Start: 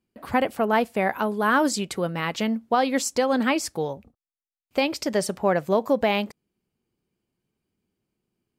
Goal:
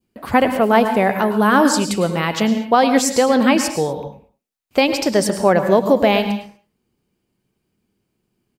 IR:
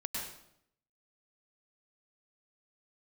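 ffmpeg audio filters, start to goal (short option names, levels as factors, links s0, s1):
-filter_complex "[0:a]asplit=2[s0][s1];[s1]adelay=190,highpass=300,lowpass=3400,asoftclip=type=hard:threshold=0.119,volume=0.0631[s2];[s0][s2]amix=inputs=2:normalize=0,asplit=2[s3][s4];[1:a]atrim=start_sample=2205,afade=t=out:st=0.3:d=0.01,atrim=end_sample=13671,asetrate=43218,aresample=44100[s5];[s4][s5]afir=irnorm=-1:irlink=0,volume=0.562[s6];[s3][s6]amix=inputs=2:normalize=0,adynamicequalizer=threshold=0.02:dfrequency=1700:dqfactor=1:tfrequency=1700:tqfactor=1:attack=5:release=100:ratio=0.375:range=2:mode=cutabove:tftype=bell,volume=1.68"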